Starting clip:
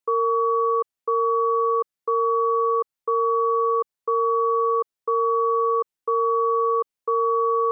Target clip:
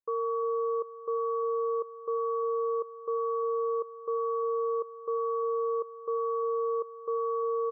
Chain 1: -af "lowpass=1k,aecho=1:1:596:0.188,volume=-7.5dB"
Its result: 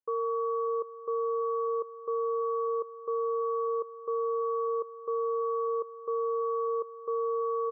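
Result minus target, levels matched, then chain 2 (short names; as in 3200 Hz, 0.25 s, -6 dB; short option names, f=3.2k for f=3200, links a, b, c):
echo 0.246 s late
-af "lowpass=1k,aecho=1:1:350:0.188,volume=-7.5dB"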